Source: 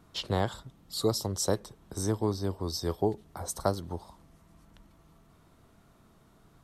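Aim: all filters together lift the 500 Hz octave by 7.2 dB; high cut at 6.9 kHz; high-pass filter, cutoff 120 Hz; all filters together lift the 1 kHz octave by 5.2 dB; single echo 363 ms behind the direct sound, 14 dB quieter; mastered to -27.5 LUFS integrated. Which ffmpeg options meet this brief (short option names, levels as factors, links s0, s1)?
-af "highpass=120,lowpass=6900,equalizer=f=500:t=o:g=8,equalizer=f=1000:t=o:g=3.5,aecho=1:1:363:0.2,volume=1.06"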